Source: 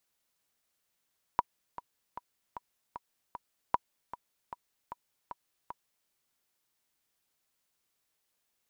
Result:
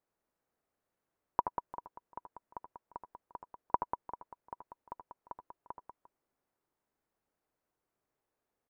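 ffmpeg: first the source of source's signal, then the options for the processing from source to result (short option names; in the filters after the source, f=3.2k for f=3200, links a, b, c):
-f lavfi -i "aevalsrc='pow(10,(-11.5-15.5*gte(mod(t,6*60/153),60/153))/20)*sin(2*PI*969*mod(t,60/153))*exp(-6.91*mod(t,60/153)/0.03)':d=4.7:s=44100"
-af "firequalizer=gain_entry='entry(200,0);entry(360,4);entry(3200,-17)':delay=0.05:min_phase=1,aecho=1:1:77|87|191|349:0.376|0.15|0.422|0.126"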